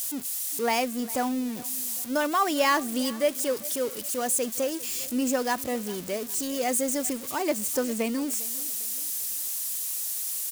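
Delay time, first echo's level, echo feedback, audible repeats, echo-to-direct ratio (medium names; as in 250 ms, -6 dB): 401 ms, -20.0 dB, 39%, 2, -19.5 dB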